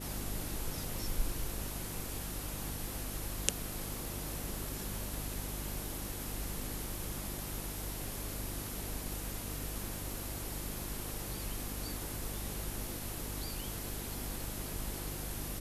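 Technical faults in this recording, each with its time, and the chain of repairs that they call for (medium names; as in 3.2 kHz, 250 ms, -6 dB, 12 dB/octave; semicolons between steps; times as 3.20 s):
crackle 25 per s -45 dBFS
hum 50 Hz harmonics 7 -44 dBFS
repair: de-click; de-hum 50 Hz, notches 7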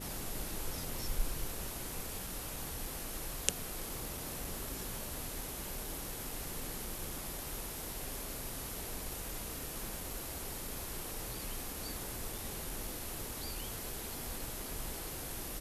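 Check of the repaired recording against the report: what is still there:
nothing left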